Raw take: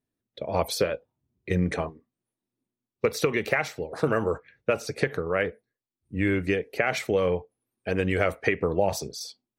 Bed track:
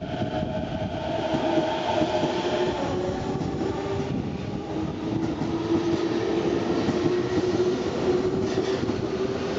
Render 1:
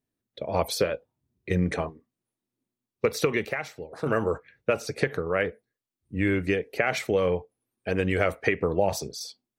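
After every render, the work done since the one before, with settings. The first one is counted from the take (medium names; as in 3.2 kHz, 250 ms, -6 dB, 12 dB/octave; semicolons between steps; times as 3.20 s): 3.45–4.06 s: gain -6 dB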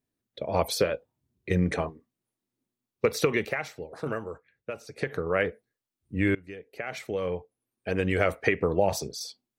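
3.88–5.26 s: dip -11.5 dB, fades 0.35 s; 6.35–8.29 s: fade in, from -23.5 dB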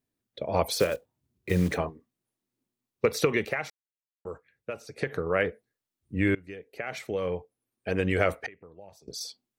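0.66–1.78 s: block-companded coder 5-bit; 3.70–4.25 s: mute; 8.46–9.08 s: inverted gate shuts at -28 dBFS, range -25 dB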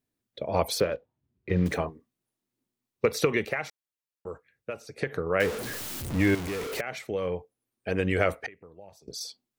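0.80–1.66 s: distance through air 290 m; 5.40–6.81 s: jump at every zero crossing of -28.5 dBFS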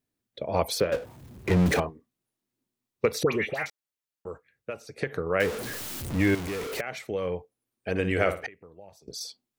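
0.92–1.80 s: power-law waveshaper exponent 0.5; 3.23–3.66 s: phase dispersion highs, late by 98 ms, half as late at 1.8 kHz; 7.90–8.43 s: flutter echo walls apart 9.7 m, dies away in 0.33 s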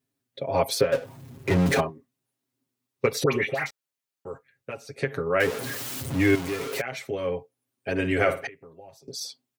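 high-pass 51 Hz; comb 7.4 ms, depth 86%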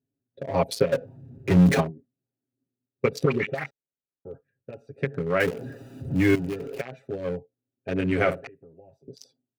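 local Wiener filter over 41 samples; dynamic bell 180 Hz, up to +7 dB, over -42 dBFS, Q 2.2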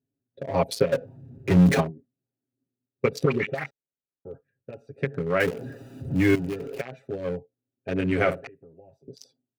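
no audible change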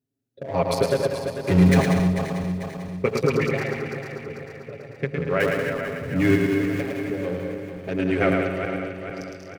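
backward echo that repeats 222 ms, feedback 70%, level -7.5 dB; bouncing-ball echo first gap 110 ms, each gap 0.7×, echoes 5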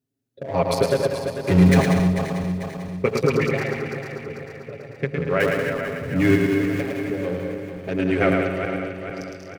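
trim +1.5 dB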